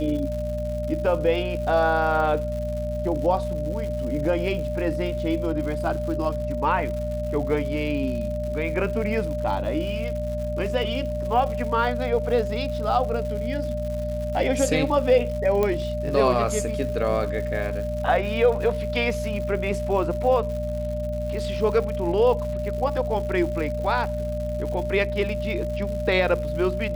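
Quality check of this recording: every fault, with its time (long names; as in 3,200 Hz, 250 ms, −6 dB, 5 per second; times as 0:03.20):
surface crackle 200 per second −33 dBFS
mains hum 60 Hz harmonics 4 −30 dBFS
whistle 600 Hz −28 dBFS
0:15.63: click −12 dBFS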